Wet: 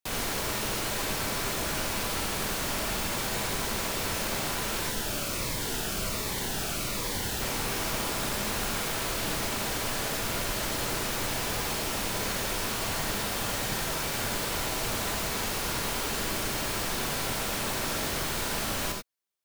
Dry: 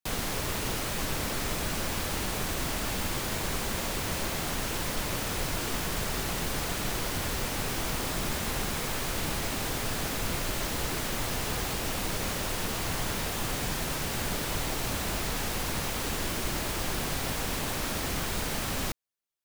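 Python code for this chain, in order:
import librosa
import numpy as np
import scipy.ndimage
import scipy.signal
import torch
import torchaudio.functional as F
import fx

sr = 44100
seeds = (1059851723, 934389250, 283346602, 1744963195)

y = fx.low_shelf(x, sr, hz=220.0, db=-5.5)
y = fx.rev_gated(y, sr, seeds[0], gate_ms=110, shape='rising', drr_db=2.0)
y = fx.notch_cascade(y, sr, direction='falling', hz=1.3, at=(4.89, 7.4), fade=0.02)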